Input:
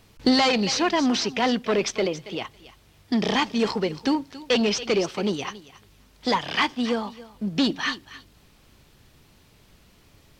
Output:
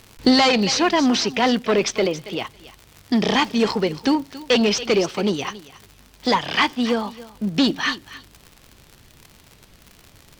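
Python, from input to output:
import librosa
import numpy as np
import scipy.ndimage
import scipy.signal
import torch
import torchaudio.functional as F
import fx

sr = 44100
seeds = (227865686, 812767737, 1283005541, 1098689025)

y = fx.dmg_crackle(x, sr, seeds[0], per_s=100.0, level_db=-35.0)
y = y * librosa.db_to_amplitude(4.0)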